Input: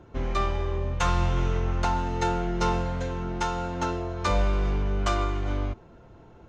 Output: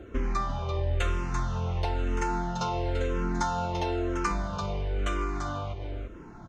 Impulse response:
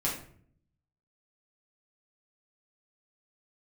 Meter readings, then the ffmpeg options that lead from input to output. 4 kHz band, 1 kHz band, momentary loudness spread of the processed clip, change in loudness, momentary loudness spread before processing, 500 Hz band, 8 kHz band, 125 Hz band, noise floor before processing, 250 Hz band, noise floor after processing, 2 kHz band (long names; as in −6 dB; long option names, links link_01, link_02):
−3.5 dB, −2.5 dB, 5 LU, −3.0 dB, 5 LU, −2.5 dB, can't be measured, −3.0 dB, −51 dBFS, −2.0 dB, −45 dBFS, −2.5 dB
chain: -filter_complex "[0:a]acompressor=threshold=-32dB:ratio=5,asplit=2[link_01][link_02];[link_02]aecho=0:1:340:0.447[link_03];[link_01][link_03]amix=inputs=2:normalize=0,asplit=2[link_04][link_05];[link_05]afreqshift=-1[link_06];[link_04][link_06]amix=inputs=2:normalize=1,volume=8dB"